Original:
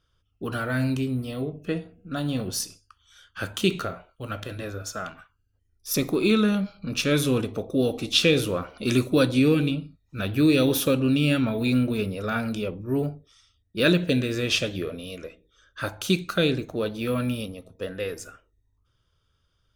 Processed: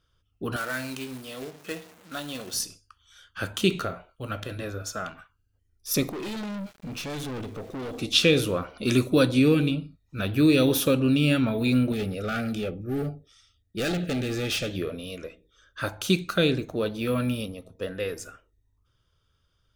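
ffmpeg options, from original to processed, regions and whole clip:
-filter_complex "[0:a]asettb=1/sr,asplit=3[s0][s1][s2];[s0]atrim=end=0.564[s3];[s1]atrim=start=0.56:end=2.54,asetpts=PTS-STARTPTS,afade=t=in:d=0.004:c=qsin,afade=t=out:st=1.976:d=0.004:c=qsin,aeval=exprs='val(0)+0.5*0.0075*sgn(val(0))':c=same,highpass=f=880:p=1,acrusher=bits=2:mode=log:mix=0:aa=0.000001[s4];[s2]atrim=start=2.536[s5];[s3][s4]acrossfade=d=0.004:c1=hsin:c2=qsin[s6];[s6][s5]acrossfade=d=0.004:c1=qsin:c2=hsin,asettb=1/sr,asplit=3[s7][s8][s9];[s7]atrim=end=6.094[s10];[s8]atrim=start=6.09:end=7.98,asetpts=PTS-STARTPTS,afade=t=in:d=0.004:c=qsin,afade=t=out:st=1.886:d=0.004:c=qsin,adynamicsmooth=sensitivity=6.5:basefreq=6200,aeval=exprs='(tanh(39.8*val(0)+0.15)-tanh(0.15))/39.8':c=same,aeval=exprs='val(0)*gte(abs(val(0)),0.00398)':c=same[s11];[s9]atrim=start=7.976[s12];[s10][s11]acrossfade=d=0.004:c1=hsin:c2=qsin[s13];[s13][s12]acrossfade=d=0.004:c1=qsin:c2=hsin,asettb=1/sr,asplit=3[s14][s15][s16];[s14]atrim=end=11.924[s17];[s15]atrim=start=11.92:end=14.7,asetpts=PTS-STARTPTS,afade=t=in:d=0.004:c=qsin,afade=t=out:st=2.776:d=0.004:c=qsin,volume=17.8,asoftclip=hard,volume=0.0562,asuperstop=centerf=1000:order=20:qfactor=3.5[s18];[s16]atrim=start=14.696[s19];[s17][s18]acrossfade=d=0.004:c1=hsin:c2=qsin[s20];[s20][s19]acrossfade=d=0.004:c1=qsin:c2=hsin"

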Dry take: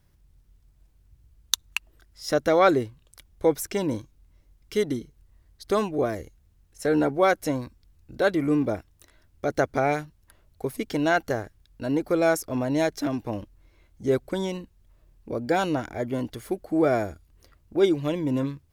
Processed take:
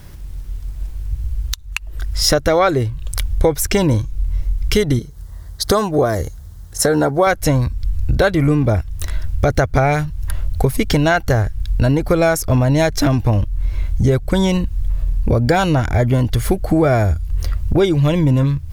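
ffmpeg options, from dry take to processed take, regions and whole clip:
-filter_complex "[0:a]asettb=1/sr,asplit=3[s0][s1][s2];[s0]atrim=end=4.994[s3];[s1]atrim=start=4.99:end=7.27,asetpts=PTS-STARTPTS,afade=t=in:d=0.004:c=qsin,afade=t=out:st=2.276:d=0.004:c=qsin,highpass=f=300:p=1,equalizer=f=2500:w=2.2:g=-12[s4];[s2]atrim=start=7.266[s5];[s3][s4]acrossfade=d=0.004:c1=hsin:c2=qsin[s6];[s6][s5]acrossfade=d=0.004:c1=qsin:c2=hsin,asubboost=boost=9:cutoff=96,acompressor=threshold=0.0126:ratio=6,alimiter=level_in=20:limit=0.891:release=50:level=0:latency=1,volume=0.891"

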